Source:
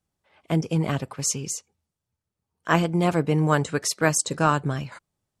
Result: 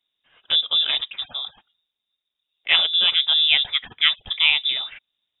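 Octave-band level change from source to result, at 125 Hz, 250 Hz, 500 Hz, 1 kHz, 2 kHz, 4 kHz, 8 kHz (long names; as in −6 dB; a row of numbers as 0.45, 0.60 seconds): below −30 dB, below −25 dB, −18.5 dB, −11.5 dB, +6.0 dB, +20.5 dB, below −40 dB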